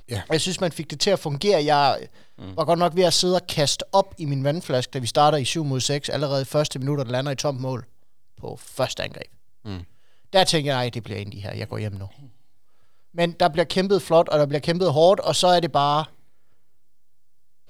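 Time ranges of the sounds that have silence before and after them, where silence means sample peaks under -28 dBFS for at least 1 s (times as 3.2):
13.18–16.05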